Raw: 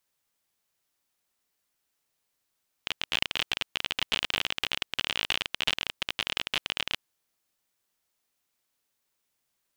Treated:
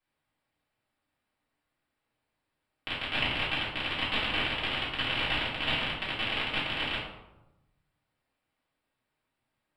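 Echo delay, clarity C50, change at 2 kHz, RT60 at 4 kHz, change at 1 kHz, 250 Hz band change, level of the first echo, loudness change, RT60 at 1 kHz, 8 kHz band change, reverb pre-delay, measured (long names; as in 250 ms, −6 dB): no echo audible, 2.5 dB, +2.0 dB, 0.55 s, +4.0 dB, +7.5 dB, no echo audible, 0.0 dB, 0.95 s, below −15 dB, 3 ms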